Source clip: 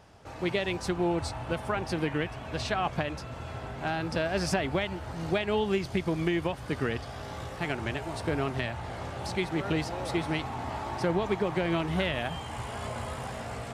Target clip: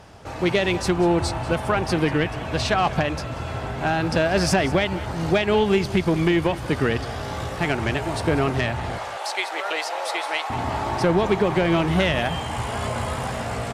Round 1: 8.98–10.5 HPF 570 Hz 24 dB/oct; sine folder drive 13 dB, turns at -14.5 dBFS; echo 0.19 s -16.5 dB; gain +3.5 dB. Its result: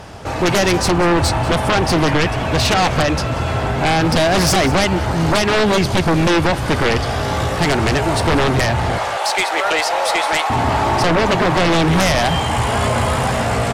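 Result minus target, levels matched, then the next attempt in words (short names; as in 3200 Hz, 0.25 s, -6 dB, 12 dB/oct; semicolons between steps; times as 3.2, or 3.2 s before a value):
sine folder: distortion +21 dB
8.98–10.5 HPF 570 Hz 24 dB/oct; sine folder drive 2 dB, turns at -14.5 dBFS; echo 0.19 s -16.5 dB; gain +3.5 dB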